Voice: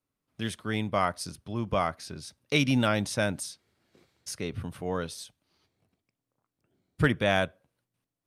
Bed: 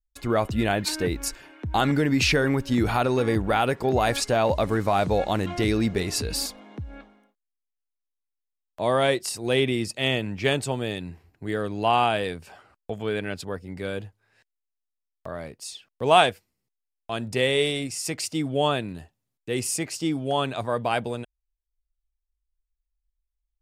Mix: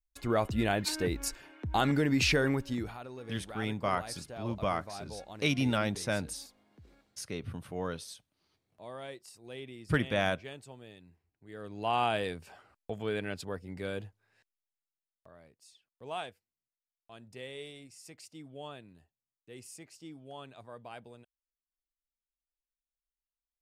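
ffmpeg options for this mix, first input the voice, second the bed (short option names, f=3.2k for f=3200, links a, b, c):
-filter_complex "[0:a]adelay=2900,volume=-4.5dB[a];[1:a]volume=10.5dB,afade=t=out:st=2.47:d=0.48:silence=0.149624,afade=t=in:st=11.48:d=0.68:silence=0.158489,afade=t=out:st=14.24:d=1.05:silence=0.16788[b];[a][b]amix=inputs=2:normalize=0"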